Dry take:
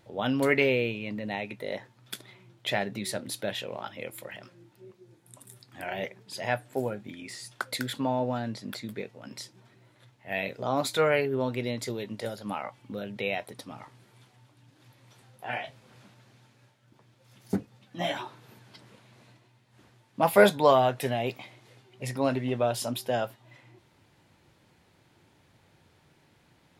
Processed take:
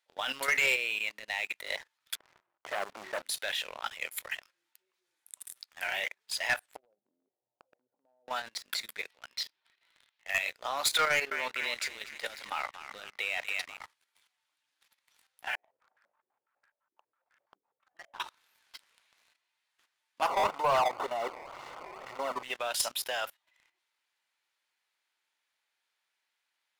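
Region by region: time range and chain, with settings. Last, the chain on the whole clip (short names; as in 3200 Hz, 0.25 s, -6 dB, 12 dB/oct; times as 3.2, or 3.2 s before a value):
2.15–3.22 treble ducked by the level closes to 600 Hz, closed at -24 dBFS + LPF 1200 Hz 24 dB/oct + sample leveller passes 3
6.76–8.28 steep low-pass 710 Hz + compressor 8:1, threshold -40 dBFS
9.1–10.3 resonant high shelf 5600 Hz -11.5 dB, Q 1.5 + hard clip -35 dBFS + mismatched tape noise reduction encoder only
11.07–13.77 high shelf 7500 Hz -11.5 dB + narrowing echo 0.243 s, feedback 59%, band-pass 2000 Hz, level -7 dB
15.55–18.2 compressor 12:1, threshold -45 dBFS + stepped low-pass 12 Hz 380–1600 Hz
20.27–22.43 zero-crossing step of -25 dBFS + decimation with a swept rate 18×, swing 160% 2 Hz + polynomial smoothing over 65 samples
whole clip: HPF 1400 Hz 12 dB/oct; level quantiser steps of 11 dB; sample leveller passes 3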